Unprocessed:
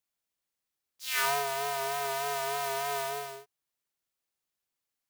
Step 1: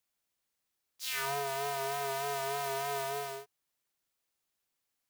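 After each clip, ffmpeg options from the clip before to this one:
-filter_complex "[0:a]acrossover=split=410[s0][s1];[s1]acompressor=threshold=0.0126:ratio=3[s2];[s0][s2]amix=inputs=2:normalize=0,volume=1.41"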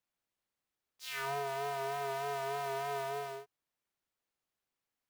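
-af "highshelf=f=3700:g=-10,volume=0.891"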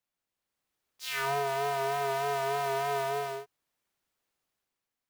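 -af "dynaudnorm=f=100:g=11:m=2.11"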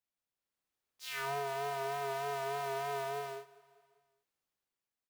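-af "aecho=1:1:198|396|594|792:0.0794|0.0453|0.0258|0.0147,volume=0.473"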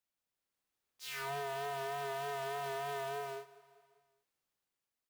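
-af "asoftclip=type=tanh:threshold=0.0178,volume=1.12"

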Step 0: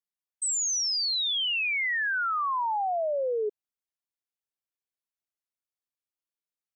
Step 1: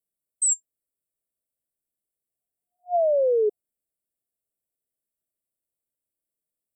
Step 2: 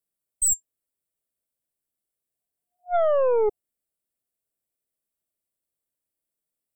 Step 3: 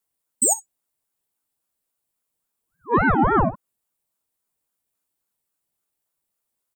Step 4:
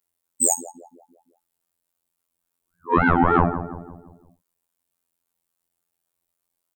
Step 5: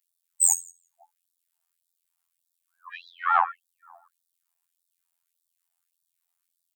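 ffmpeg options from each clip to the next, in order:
-af "afftfilt=real='re*(1-between(b*sr/4096,720,7400))':imag='im*(1-between(b*sr/4096,720,7400))':win_size=4096:overlap=0.75,volume=2.37"
-af "aeval=exprs='0.168*(cos(1*acos(clip(val(0)/0.168,-1,1)))-cos(1*PI/2))+0.0422*(cos(2*acos(clip(val(0)/0.168,-1,1)))-cos(2*PI/2))+0.00596*(cos(5*acos(clip(val(0)/0.168,-1,1)))-cos(5*PI/2))':c=same"
-af "acompressor=threshold=0.0708:ratio=2.5,aecho=1:1:13|60:0.316|0.141,aeval=exprs='val(0)*sin(2*PI*570*n/s+570*0.6/3.6*sin(2*PI*3.6*n/s))':c=same,volume=2.66"
-filter_complex "[0:a]asplit=2[s0][s1];[s1]adelay=170,lowpass=f=1100:p=1,volume=0.282,asplit=2[s2][s3];[s3]adelay=170,lowpass=f=1100:p=1,volume=0.51,asplit=2[s4][s5];[s5]adelay=170,lowpass=f=1100:p=1,volume=0.51,asplit=2[s6][s7];[s7]adelay=170,lowpass=f=1100:p=1,volume=0.51,asplit=2[s8][s9];[s9]adelay=170,lowpass=f=1100:p=1,volume=0.51[s10];[s0][s2][s4][s6][s8][s10]amix=inputs=6:normalize=0,acontrast=34,afftfilt=real='hypot(re,im)*cos(PI*b)':imag='0':win_size=2048:overlap=0.75,volume=0.841"
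-af "afftfilt=real='re*gte(b*sr/1024,630*pow(3500/630,0.5+0.5*sin(2*PI*1.7*pts/sr)))':imag='im*gte(b*sr/1024,630*pow(3500/630,0.5+0.5*sin(2*PI*1.7*pts/sr)))':win_size=1024:overlap=0.75"

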